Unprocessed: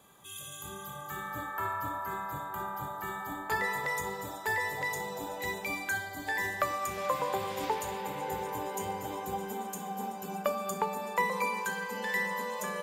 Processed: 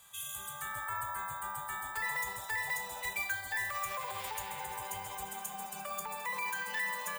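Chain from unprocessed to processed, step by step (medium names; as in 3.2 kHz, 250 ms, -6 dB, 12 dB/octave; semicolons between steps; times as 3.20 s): time stretch by phase-locked vocoder 0.56×; careless resampling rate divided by 2×, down none, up hold; dynamic bell 5 kHz, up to -6 dB, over -52 dBFS, Q 0.78; peak limiter -27.5 dBFS, peak gain reduction 10 dB; amplifier tone stack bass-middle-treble 10-0-10; trim +7.5 dB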